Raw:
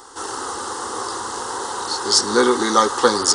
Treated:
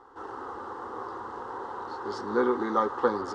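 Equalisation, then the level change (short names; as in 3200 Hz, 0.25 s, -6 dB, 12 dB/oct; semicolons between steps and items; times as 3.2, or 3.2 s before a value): LPF 1400 Hz 12 dB/oct; -8.5 dB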